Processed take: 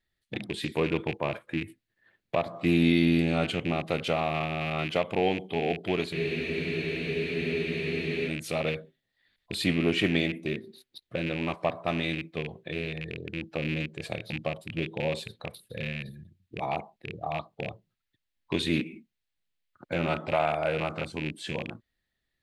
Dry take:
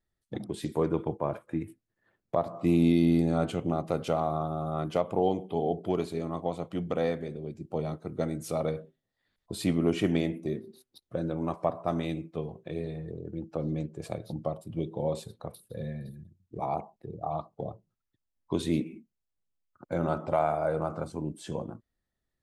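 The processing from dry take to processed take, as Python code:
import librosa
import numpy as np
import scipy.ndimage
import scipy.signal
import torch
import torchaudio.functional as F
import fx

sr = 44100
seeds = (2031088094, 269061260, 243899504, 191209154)

y = fx.rattle_buzz(x, sr, strikes_db=-35.0, level_db=-32.0)
y = fx.band_shelf(y, sr, hz=2700.0, db=9.5, octaves=1.7)
y = fx.spec_freeze(y, sr, seeds[0], at_s=6.15, hold_s=2.12)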